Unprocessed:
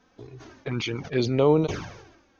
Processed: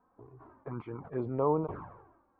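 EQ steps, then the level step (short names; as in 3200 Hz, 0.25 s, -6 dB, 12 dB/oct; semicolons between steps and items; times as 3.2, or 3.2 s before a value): ladder low-pass 1200 Hz, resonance 60%; 0.0 dB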